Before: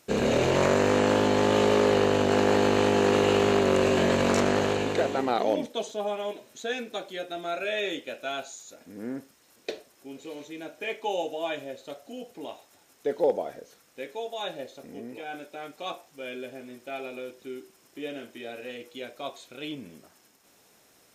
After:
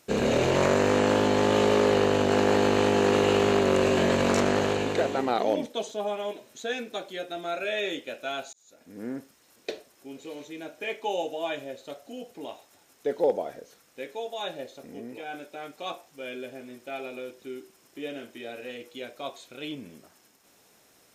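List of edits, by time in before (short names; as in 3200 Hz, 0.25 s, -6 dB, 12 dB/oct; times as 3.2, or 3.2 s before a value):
8.53–9.01 fade in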